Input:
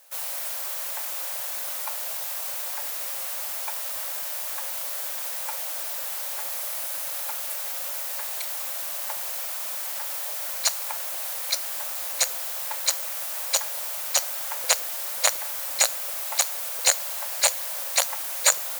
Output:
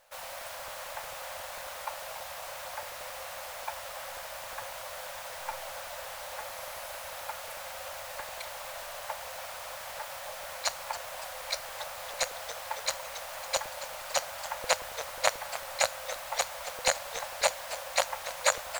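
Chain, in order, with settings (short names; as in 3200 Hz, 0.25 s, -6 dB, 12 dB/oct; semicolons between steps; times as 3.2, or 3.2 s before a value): RIAA curve playback; warbling echo 0.282 s, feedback 59%, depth 178 cents, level -13 dB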